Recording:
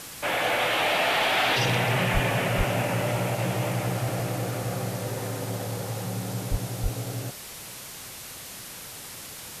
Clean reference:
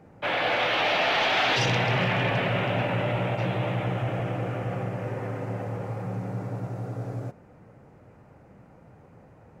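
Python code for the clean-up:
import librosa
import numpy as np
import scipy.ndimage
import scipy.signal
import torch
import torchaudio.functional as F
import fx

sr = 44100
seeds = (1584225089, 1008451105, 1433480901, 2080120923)

y = fx.fix_deplosive(x, sr, at_s=(2.13, 2.57, 6.5, 6.82))
y = fx.noise_reduce(y, sr, print_start_s=7.74, print_end_s=8.24, reduce_db=12.0)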